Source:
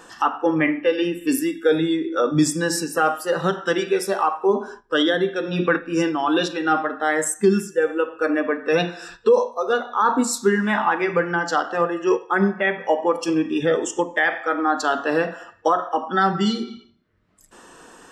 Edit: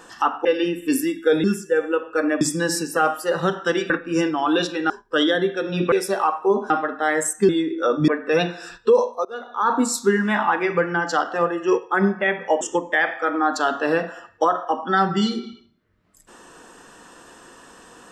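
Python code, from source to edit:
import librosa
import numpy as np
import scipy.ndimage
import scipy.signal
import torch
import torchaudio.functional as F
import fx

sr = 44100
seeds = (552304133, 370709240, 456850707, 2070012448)

y = fx.edit(x, sr, fx.cut(start_s=0.45, length_s=0.39),
    fx.swap(start_s=1.83, length_s=0.59, other_s=7.5, other_length_s=0.97),
    fx.swap(start_s=3.91, length_s=0.78, other_s=5.71, other_length_s=1.0),
    fx.fade_in_from(start_s=9.64, length_s=0.5, floor_db=-23.5),
    fx.cut(start_s=13.0, length_s=0.85), tone=tone)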